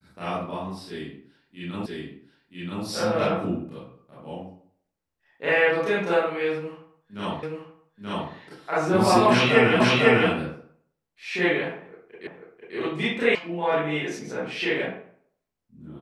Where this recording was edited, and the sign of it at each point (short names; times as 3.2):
1.86 repeat of the last 0.98 s
7.43 repeat of the last 0.88 s
9.8 repeat of the last 0.5 s
12.27 repeat of the last 0.49 s
13.35 sound cut off